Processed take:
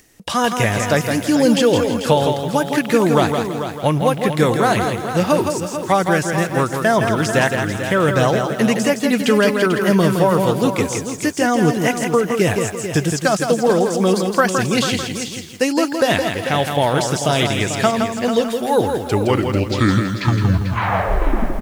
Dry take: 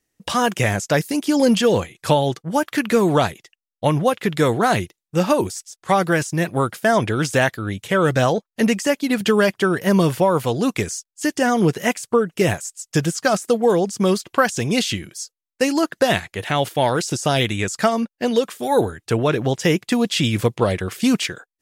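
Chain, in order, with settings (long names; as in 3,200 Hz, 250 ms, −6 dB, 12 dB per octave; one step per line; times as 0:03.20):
turntable brake at the end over 2.73 s
upward compression, threshold −38 dBFS
on a send: single-tap delay 442 ms −9.5 dB
on the sum: feedback echo at a low word length 165 ms, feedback 35%, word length 7 bits, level −5.5 dB
level +1 dB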